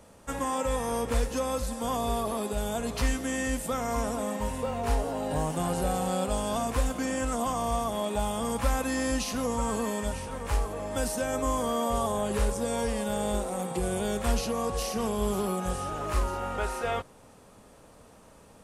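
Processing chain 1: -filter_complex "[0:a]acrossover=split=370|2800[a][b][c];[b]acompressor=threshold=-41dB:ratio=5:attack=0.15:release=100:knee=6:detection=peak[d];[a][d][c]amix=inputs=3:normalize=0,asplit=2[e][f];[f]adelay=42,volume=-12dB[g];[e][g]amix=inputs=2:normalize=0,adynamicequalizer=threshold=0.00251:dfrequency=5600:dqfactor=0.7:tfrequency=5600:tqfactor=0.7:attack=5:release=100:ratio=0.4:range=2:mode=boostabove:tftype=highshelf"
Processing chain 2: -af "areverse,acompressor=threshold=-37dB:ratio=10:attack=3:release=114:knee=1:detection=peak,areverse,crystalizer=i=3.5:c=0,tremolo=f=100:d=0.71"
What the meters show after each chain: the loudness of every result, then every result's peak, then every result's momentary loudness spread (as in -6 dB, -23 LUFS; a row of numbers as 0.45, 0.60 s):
-32.0, -39.5 LUFS; -15.0, -19.5 dBFS; 5, 7 LU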